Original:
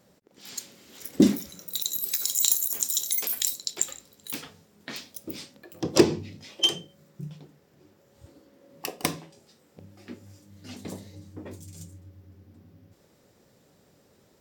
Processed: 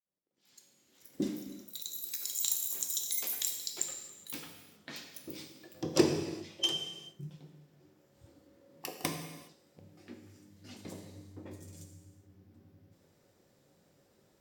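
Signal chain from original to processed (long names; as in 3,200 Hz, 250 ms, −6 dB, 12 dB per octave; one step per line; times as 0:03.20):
fade in at the beginning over 3.18 s
reverb whose tail is shaped and stops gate 440 ms falling, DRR 4 dB
level −8 dB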